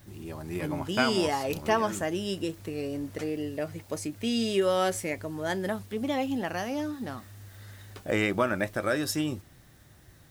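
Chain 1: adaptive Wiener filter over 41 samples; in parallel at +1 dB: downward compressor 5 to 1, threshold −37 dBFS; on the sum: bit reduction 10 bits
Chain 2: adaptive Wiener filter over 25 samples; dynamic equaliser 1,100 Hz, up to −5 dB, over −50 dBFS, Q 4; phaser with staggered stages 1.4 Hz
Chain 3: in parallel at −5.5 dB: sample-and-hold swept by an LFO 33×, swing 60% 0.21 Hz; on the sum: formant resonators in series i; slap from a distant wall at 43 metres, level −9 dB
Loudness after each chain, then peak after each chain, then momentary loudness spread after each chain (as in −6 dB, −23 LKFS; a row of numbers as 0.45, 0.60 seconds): −28.5, −34.0, −35.0 LKFS; −8.5, −12.5, −19.5 dBFS; 11, 13, 12 LU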